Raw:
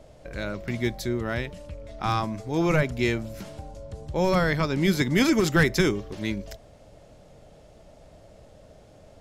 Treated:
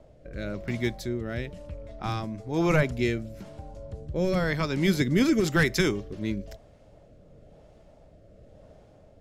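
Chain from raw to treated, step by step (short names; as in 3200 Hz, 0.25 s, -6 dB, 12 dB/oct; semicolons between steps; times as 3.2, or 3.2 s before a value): rotary speaker horn 1 Hz; mismatched tape noise reduction decoder only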